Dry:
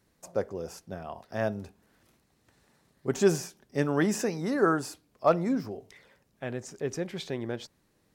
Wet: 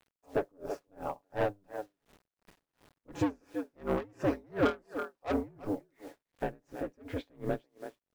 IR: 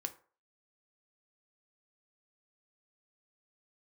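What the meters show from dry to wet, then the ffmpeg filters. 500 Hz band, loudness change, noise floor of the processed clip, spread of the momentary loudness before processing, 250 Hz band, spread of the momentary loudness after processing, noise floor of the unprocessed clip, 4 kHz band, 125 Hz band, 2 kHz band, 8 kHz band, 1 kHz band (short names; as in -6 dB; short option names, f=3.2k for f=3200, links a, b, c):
-5.5 dB, -5.5 dB, under -85 dBFS, 15 LU, -5.0 dB, 14 LU, -70 dBFS, -8.5 dB, -7.0 dB, -6.0 dB, under -15 dB, -4.5 dB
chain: -filter_complex "[0:a]highshelf=f=2.3k:g=-9.5,aeval=exprs='val(0)*sin(2*PI*100*n/s)':c=same,bass=f=250:g=-3,treble=f=4k:g=-11,aecho=1:1:7.1:0.4,asplit=2[a][b];[b]alimiter=limit=-21.5dB:level=0:latency=1:release=274,volume=1dB[c];[a][c]amix=inputs=2:normalize=0,asplit=2[d][e];[e]adelay=330,highpass=300,lowpass=3.4k,asoftclip=type=hard:threshold=-16.5dB,volume=-13dB[f];[d][f]amix=inputs=2:normalize=0,asoftclip=type=tanh:threshold=-24dB,acrusher=bits=9:mix=0:aa=0.000001,aeval=exprs='val(0)*pow(10,-33*(0.5-0.5*cos(2*PI*2.8*n/s))/20)':c=same,volume=3.5dB"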